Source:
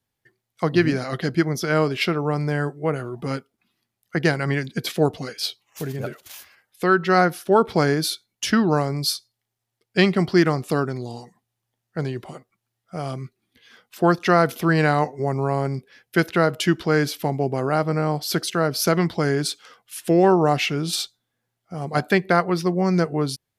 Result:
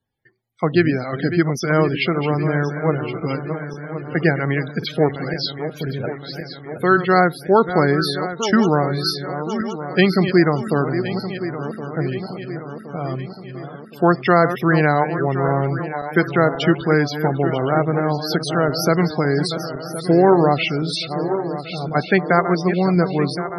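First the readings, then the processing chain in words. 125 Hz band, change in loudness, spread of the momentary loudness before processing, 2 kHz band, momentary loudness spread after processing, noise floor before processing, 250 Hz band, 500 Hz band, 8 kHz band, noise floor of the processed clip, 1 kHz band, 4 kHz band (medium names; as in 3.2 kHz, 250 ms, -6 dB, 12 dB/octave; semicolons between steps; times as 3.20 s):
+3.5 dB, +2.5 dB, 14 LU, +3.0 dB, 12 LU, -81 dBFS, +3.5 dB, +3.5 dB, -4.5 dB, -37 dBFS, +3.0 dB, +1.0 dB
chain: backward echo that repeats 534 ms, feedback 73%, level -10 dB; loudest bins only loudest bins 64; trim +2.5 dB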